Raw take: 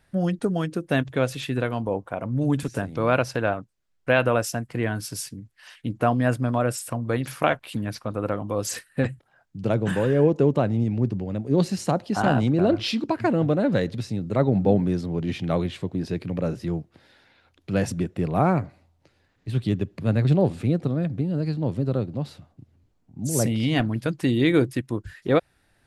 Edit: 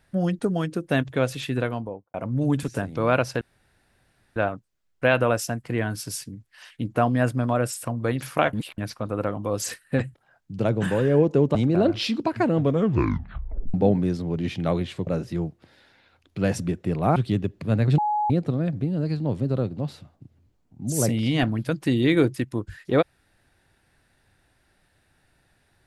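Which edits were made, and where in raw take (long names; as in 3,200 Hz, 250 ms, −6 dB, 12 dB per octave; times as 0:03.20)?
0:01.61–0:02.14: fade out and dull
0:03.41: splice in room tone 0.95 s
0:07.58–0:07.83: reverse
0:10.60–0:12.39: remove
0:13.43: tape stop 1.15 s
0:15.91–0:16.39: remove
0:18.48–0:19.53: remove
0:20.35–0:20.67: beep over 841 Hz −20.5 dBFS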